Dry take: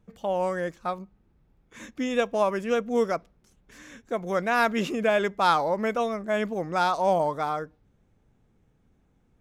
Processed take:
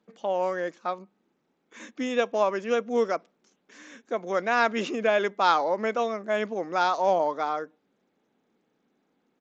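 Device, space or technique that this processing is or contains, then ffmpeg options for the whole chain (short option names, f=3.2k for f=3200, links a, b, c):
Bluetooth headset: -af "highpass=f=230:w=0.5412,highpass=f=230:w=1.3066,aresample=16000,aresample=44100" -ar 16000 -c:a sbc -b:a 64k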